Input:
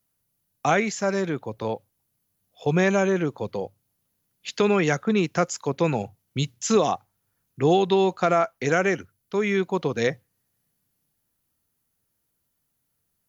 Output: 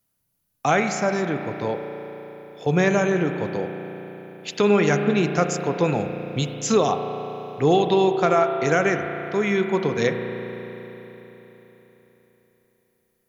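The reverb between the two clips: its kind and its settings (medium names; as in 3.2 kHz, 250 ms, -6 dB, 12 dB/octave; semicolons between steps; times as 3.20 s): spring tank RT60 4 s, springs 34 ms, chirp 75 ms, DRR 5.5 dB; trim +1 dB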